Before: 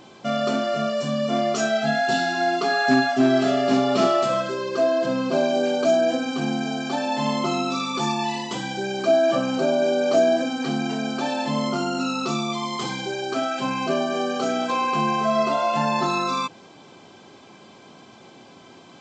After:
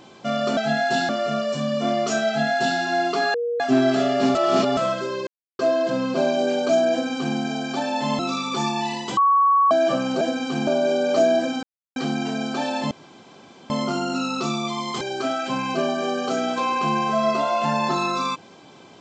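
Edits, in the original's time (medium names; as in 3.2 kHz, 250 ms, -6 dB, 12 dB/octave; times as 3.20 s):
1.75–2.27 s: copy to 0.57 s
2.82–3.08 s: bleep 475 Hz -21.5 dBFS
3.83–4.25 s: reverse
4.75 s: insert silence 0.32 s
6.07–6.53 s: copy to 9.64 s
7.35–7.62 s: delete
8.60–9.14 s: bleep 1.12 kHz -13.5 dBFS
10.60 s: insert silence 0.33 s
11.55 s: insert room tone 0.79 s
12.86–13.13 s: delete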